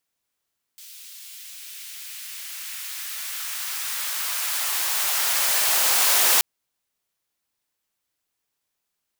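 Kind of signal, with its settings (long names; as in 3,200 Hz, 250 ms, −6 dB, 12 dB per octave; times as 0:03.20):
filter sweep on noise white, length 5.63 s highpass, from 3,300 Hz, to 560 Hz, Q 1.1, exponential, gain ramp +26.5 dB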